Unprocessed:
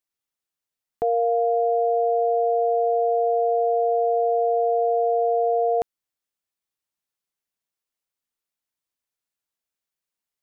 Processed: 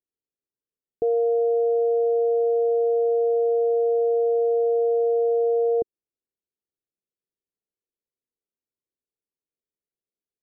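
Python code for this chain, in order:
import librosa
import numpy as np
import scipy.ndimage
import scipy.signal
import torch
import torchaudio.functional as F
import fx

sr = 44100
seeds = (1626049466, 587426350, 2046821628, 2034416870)

y = fx.ladder_lowpass(x, sr, hz=500.0, resonance_pct=50)
y = F.gain(torch.from_numpy(y), 6.5).numpy()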